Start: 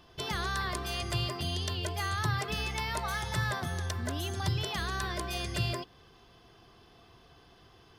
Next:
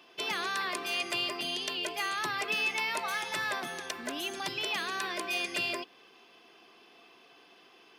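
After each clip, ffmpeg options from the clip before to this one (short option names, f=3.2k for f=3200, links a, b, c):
-af "highpass=f=240:w=0.5412,highpass=f=240:w=1.3066,equalizer=f=2.5k:t=o:w=0.46:g=10"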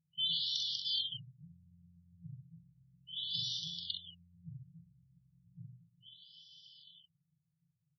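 -af "afftfilt=real='re*(1-between(b*sr/4096,180,2900))':imag='im*(1-between(b*sr/4096,180,2900))':win_size=4096:overlap=0.75,aecho=1:1:43|65|236|402:0.562|0.422|0.119|0.1,afftfilt=real='re*lt(b*sr/1024,490*pow(6100/490,0.5+0.5*sin(2*PI*0.34*pts/sr)))':imag='im*lt(b*sr/1024,490*pow(6100/490,0.5+0.5*sin(2*PI*0.34*pts/sr)))':win_size=1024:overlap=0.75,volume=3.5dB"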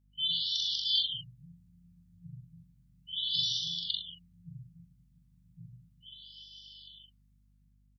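-filter_complex "[0:a]acrossover=split=800[a][b];[b]dynaudnorm=f=140:g=9:m=5dB[c];[a][c]amix=inputs=2:normalize=0,aeval=exprs='val(0)+0.000355*(sin(2*PI*50*n/s)+sin(2*PI*2*50*n/s)/2+sin(2*PI*3*50*n/s)/3+sin(2*PI*4*50*n/s)/4+sin(2*PI*5*50*n/s)/5)':c=same,asplit=2[d][e];[e]adelay=41,volume=-4dB[f];[d][f]amix=inputs=2:normalize=0"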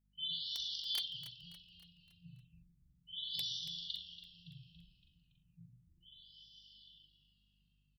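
-filter_complex "[0:a]aeval=exprs='(mod(7.94*val(0)+1,2)-1)/7.94':c=same,flanger=delay=4.7:depth=2:regen=66:speed=1.2:shape=sinusoidal,asplit=6[a][b][c][d][e][f];[b]adelay=282,afreqshift=-94,volume=-13dB[g];[c]adelay=564,afreqshift=-188,volume=-19.2dB[h];[d]adelay=846,afreqshift=-282,volume=-25.4dB[i];[e]adelay=1128,afreqshift=-376,volume=-31.6dB[j];[f]adelay=1410,afreqshift=-470,volume=-37.8dB[k];[a][g][h][i][j][k]amix=inputs=6:normalize=0,volume=-5dB"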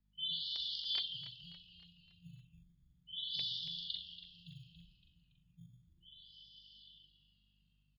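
-filter_complex "[0:a]aresample=11025,aresample=44100,acrossover=split=170|1100|2900[a][b][c][d];[a]acrusher=samples=13:mix=1:aa=0.000001[e];[e][b][c][d]amix=inputs=4:normalize=0,volume=1dB"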